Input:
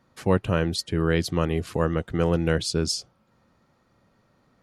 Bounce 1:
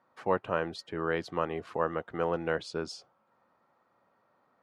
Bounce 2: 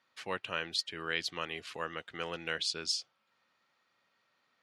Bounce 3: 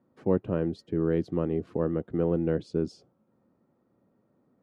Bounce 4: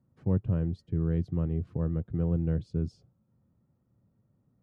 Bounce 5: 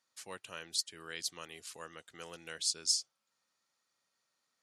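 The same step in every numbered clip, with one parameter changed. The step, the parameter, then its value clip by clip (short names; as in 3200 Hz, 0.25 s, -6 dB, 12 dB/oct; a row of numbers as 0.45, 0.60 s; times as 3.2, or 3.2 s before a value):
band-pass, frequency: 940, 2900, 310, 110, 7700 Hz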